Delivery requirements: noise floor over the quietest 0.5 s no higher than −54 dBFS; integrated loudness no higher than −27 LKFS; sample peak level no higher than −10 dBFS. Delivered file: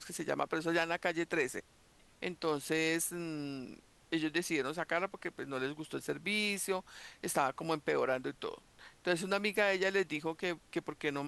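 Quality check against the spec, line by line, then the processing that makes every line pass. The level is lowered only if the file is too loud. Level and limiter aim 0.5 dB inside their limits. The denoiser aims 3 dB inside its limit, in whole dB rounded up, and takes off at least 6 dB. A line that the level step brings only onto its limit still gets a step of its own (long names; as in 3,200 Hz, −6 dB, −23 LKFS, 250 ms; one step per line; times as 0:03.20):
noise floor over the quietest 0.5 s −64 dBFS: in spec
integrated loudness −35.0 LKFS: in spec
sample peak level −15.5 dBFS: in spec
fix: no processing needed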